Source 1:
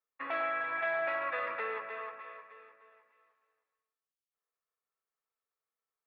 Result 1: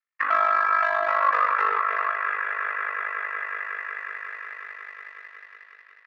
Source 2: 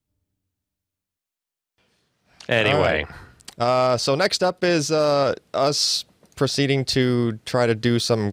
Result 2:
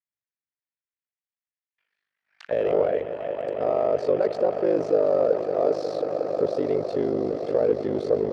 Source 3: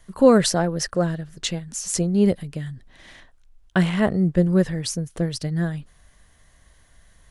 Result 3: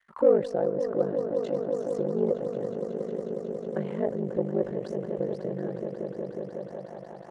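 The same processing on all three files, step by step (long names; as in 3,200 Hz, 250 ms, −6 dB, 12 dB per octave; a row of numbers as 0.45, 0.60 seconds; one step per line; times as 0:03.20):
low-shelf EQ 83 Hz +7.5 dB
on a send: echo that builds up and dies away 182 ms, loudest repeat 5, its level −15 dB
on the sum: leveller curve on the samples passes 2
in parallel at −2 dB: brickwall limiter −11 dBFS
on the sum: ring modulation 25 Hz
envelope filter 470–1,900 Hz, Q 2.9, down, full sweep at −14.5 dBFS
normalise the peak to −9 dBFS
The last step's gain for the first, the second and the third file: +10.5, −4.0, −6.5 decibels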